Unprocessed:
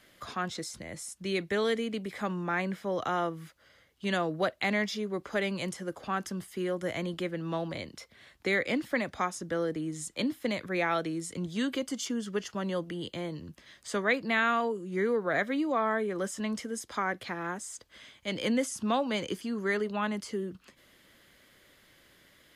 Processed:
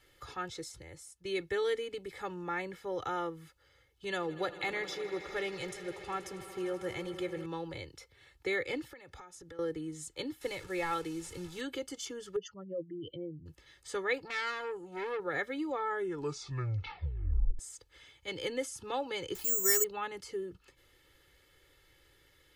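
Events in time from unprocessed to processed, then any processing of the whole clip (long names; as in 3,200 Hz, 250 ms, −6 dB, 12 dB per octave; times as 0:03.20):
0:00.64–0:01.25: fade out linear, to −9 dB
0:04.05–0:07.46: echo that builds up and dies away 80 ms, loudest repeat 5, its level −18 dB
0:08.85–0:09.59: downward compressor 12 to 1, threshold −41 dBFS
0:10.41–0:11.61: linear delta modulator 64 kbit/s, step −40 dBFS
0:12.36–0:13.46: expanding power law on the bin magnitudes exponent 2.8
0:14.18–0:15.20: saturating transformer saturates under 2,200 Hz
0:15.89: tape stop 1.70 s
0:19.35–0:19.84: bad sample-rate conversion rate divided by 6×, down none, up zero stuff
whole clip: low-shelf EQ 96 Hz +10 dB; comb filter 2.3 ms, depth 92%; level −8 dB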